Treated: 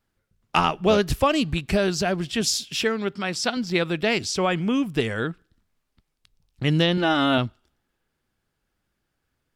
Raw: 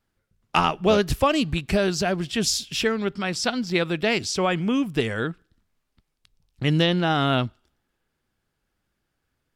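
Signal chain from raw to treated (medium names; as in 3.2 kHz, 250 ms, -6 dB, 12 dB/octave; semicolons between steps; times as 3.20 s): 2.41–3.57 s: high-pass 140 Hz 6 dB/octave; 6.97–7.38 s: comb 3.4 ms, depth 68%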